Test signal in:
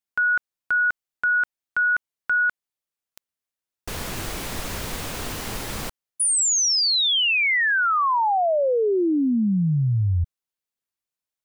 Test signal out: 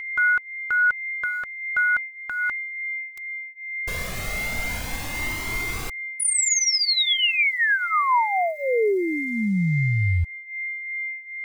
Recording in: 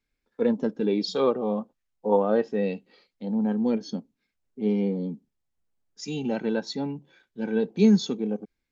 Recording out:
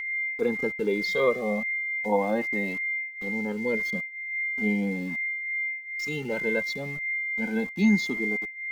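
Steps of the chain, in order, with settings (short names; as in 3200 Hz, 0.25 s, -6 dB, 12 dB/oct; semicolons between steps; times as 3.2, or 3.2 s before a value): sample gate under -41 dBFS; whine 2100 Hz -28 dBFS; cascading flanger rising 0.37 Hz; gain +3 dB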